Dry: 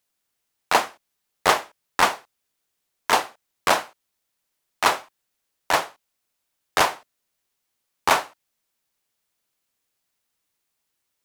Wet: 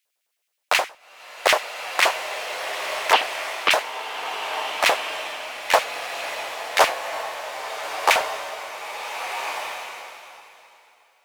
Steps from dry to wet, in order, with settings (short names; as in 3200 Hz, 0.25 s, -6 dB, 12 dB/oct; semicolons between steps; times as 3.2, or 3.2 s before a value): LFO high-pass square 9.5 Hz 550–2300 Hz; 3.13–3.71 speaker cabinet 210–4700 Hz, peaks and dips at 290 Hz +6 dB, 570 Hz -8 dB, 3000 Hz +8 dB; bloom reverb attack 1.47 s, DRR 4.5 dB